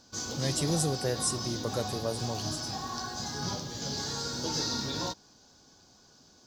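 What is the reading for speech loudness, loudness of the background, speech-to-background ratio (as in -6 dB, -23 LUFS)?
-32.5 LUFS, -34.0 LUFS, 1.5 dB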